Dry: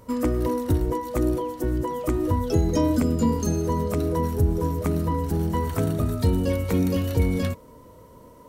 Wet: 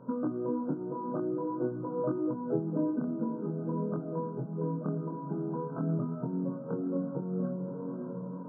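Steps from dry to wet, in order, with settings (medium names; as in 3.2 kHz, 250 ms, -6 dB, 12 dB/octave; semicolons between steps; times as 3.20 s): bass shelf 490 Hz +7.5 dB; echo that smears into a reverb 535 ms, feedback 42%, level -11.5 dB; compression 5:1, threshold -25 dBFS, peak gain reduction 15 dB; chorus 0.47 Hz, depth 5 ms; FFT band-pass 120–1600 Hz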